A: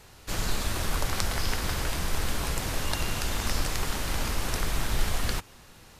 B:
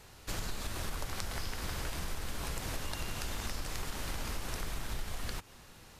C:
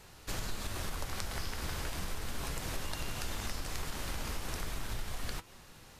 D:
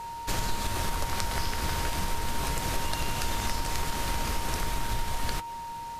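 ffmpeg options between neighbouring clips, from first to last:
ffmpeg -i in.wav -af "acompressor=threshold=-30dB:ratio=6,volume=-3dB" out.wav
ffmpeg -i in.wav -af "flanger=delay=5.1:depth=10:regen=81:speed=0.36:shape=triangular,volume=4.5dB" out.wav
ffmpeg -i in.wav -af "aeval=exprs='val(0)+0.00708*sin(2*PI*930*n/s)':channel_layout=same,volume=7.5dB" out.wav

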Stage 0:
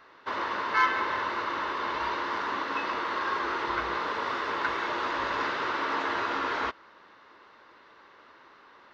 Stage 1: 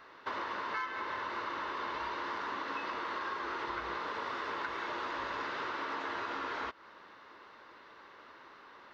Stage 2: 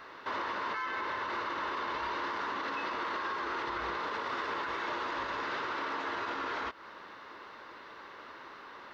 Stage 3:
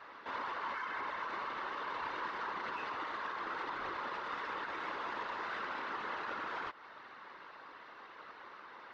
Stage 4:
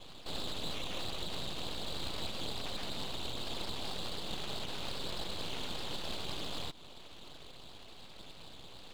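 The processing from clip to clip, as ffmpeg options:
ffmpeg -i in.wav -af "acompressor=threshold=-35dB:ratio=6" out.wav
ffmpeg -i in.wav -af "alimiter=level_in=9dB:limit=-24dB:level=0:latency=1:release=38,volume=-9dB,volume=6dB" out.wav
ffmpeg -i in.wav -filter_complex "[0:a]asplit=2[link_01][link_02];[link_02]highpass=frequency=720:poles=1,volume=6dB,asoftclip=type=tanh:threshold=-26.5dB[link_03];[link_01][link_03]amix=inputs=2:normalize=0,lowpass=frequency=2600:poles=1,volume=-6dB,afftfilt=real='hypot(re,im)*cos(2*PI*random(0))':imag='hypot(re,im)*sin(2*PI*random(1))':win_size=512:overlap=0.75,volume=1.5dB" out.wav
ffmpeg -i in.wav -af "lowpass=frequency=2600:width_type=q:width=0.5098,lowpass=frequency=2600:width_type=q:width=0.6013,lowpass=frequency=2600:width_type=q:width=0.9,lowpass=frequency=2600:width_type=q:width=2.563,afreqshift=-3000,aeval=exprs='abs(val(0))':channel_layout=same,volume=3.5dB" out.wav

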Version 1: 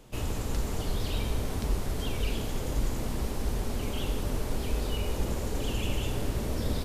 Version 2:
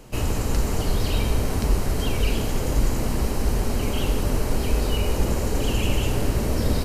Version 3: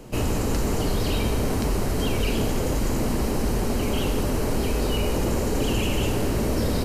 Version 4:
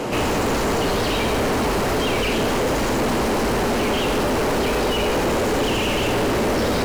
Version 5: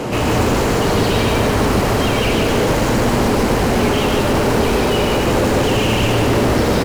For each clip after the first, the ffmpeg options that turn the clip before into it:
ffmpeg -i in.wav -af "bandreject=frequency=3500:width=8,volume=8dB" out.wav
ffmpeg -i in.wav -filter_complex "[0:a]equalizer=frequency=290:width_type=o:width=2.6:gain=6,acrossover=split=850[link_01][link_02];[link_01]alimiter=limit=-17.5dB:level=0:latency=1:release=13[link_03];[link_03][link_02]amix=inputs=2:normalize=0" out.wav
ffmpeg -i in.wav -filter_complex "[0:a]asplit=2[link_01][link_02];[link_02]highpass=frequency=720:poles=1,volume=34dB,asoftclip=type=tanh:threshold=-13dB[link_03];[link_01][link_03]amix=inputs=2:normalize=0,lowpass=frequency=2000:poles=1,volume=-6dB" out.wav
ffmpeg -i in.wav -filter_complex "[0:a]equalizer=frequency=100:width=0.68:gain=6.5,asplit=2[link_01][link_02];[link_02]aecho=0:1:148.7|274.1:0.708|0.282[link_03];[link_01][link_03]amix=inputs=2:normalize=0,volume=1.5dB" out.wav

